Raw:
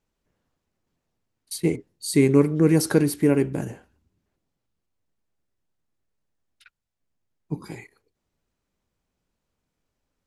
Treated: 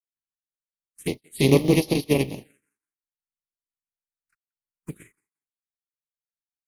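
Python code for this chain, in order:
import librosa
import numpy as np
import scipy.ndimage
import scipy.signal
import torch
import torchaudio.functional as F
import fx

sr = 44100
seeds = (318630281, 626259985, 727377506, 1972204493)

y = fx.spec_flatten(x, sr, power=0.37)
y = fx.peak_eq(y, sr, hz=8700.0, db=4.0, octaves=0.7)
y = fx.echo_thinned(y, sr, ms=271, feedback_pct=30, hz=220.0, wet_db=-19)
y = fx.stretch_grains(y, sr, factor=0.65, grain_ms=85.0)
y = fx.env_phaser(y, sr, low_hz=570.0, high_hz=1500.0, full_db=-22.5)
y = fx.spectral_expand(y, sr, expansion=1.5)
y = F.gain(torch.from_numpy(y), 1.5).numpy()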